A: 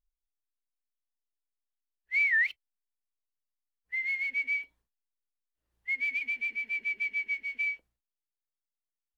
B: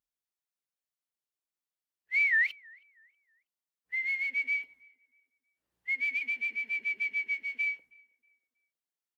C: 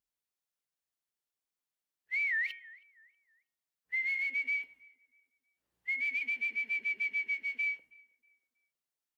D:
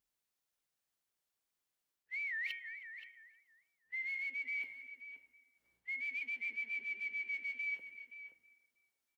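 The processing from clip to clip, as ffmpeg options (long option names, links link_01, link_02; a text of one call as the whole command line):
ffmpeg -i in.wav -filter_complex "[0:a]highpass=120,asplit=2[link_01][link_02];[link_02]adelay=320,lowpass=frequency=1500:poles=1,volume=-23.5dB,asplit=2[link_03][link_04];[link_04]adelay=320,lowpass=frequency=1500:poles=1,volume=0.51,asplit=2[link_05][link_06];[link_06]adelay=320,lowpass=frequency=1500:poles=1,volume=0.51[link_07];[link_01][link_03][link_05][link_07]amix=inputs=4:normalize=0" out.wav
ffmpeg -i in.wav -af "bandreject=frequency=311.1:width_type=h:width=4,bandreject=frequency=622.2:width_type=h:width=4,bandreject=frequency=933.3:width_type=h:width=4,bandreject=frequency=1244.4:width_type=h:width=4,bandreject=frequency=1555.5:width_type=h:width=4,bandreject=frequency=1866.6:width_type=h:width=4,bandreject=frequency=2177.7:width_type=h:width=4,bandreject=frequency=2488.8:width_type=h:width=4,bandreject=frequency=2799.9:width_type=h:width=4,bandreject=frequency=3111:width_type=h:width=4,bandreject=frequency=3422.1:width_type=h:width=4,alimiter=level_in=3dB:limit=-24dB:level=0:latency=1:release=62,volume=-3dB" out.wav
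ffmpeg -i in.wav -filter_complex "[0:a]areverse,acompressor=threshold=-41dB:ratio=10,areverse,asplit=2[link_01][link_02];[link_02]adelay=524.8,volume=-9dB,highshelf=frequency=4000:gain=-11.8[link_03];[link_01][link_03]amix=inputs=2:normalize=0,volume=3dB" out.wav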